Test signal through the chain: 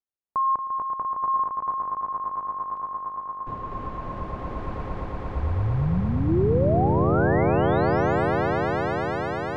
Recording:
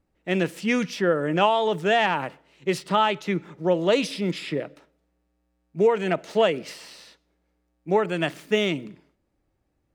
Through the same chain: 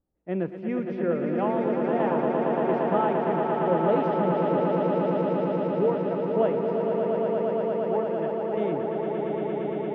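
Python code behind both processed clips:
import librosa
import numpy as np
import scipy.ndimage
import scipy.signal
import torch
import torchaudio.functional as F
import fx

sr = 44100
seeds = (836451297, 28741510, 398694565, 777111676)

y = scipy.signal.sosfilt(scipy.signal.butter(2, 1000.0, 'lowpass', fs=sr, output='sos'), x)
y = fx.tremolo_random(y, sr, seeds[0], hz=3.5, depth_pct=55)
y = fx.echo_swell(y, sr, ms=115, loudest=8, wet_db=-6)
y = y * librosa.db_to_amplitude(-3.5)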